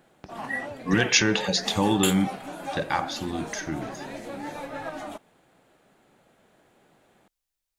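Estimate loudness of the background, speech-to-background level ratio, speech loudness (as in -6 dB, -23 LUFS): -35.5 LUFS, 10.0 dB, -25.5 LUFS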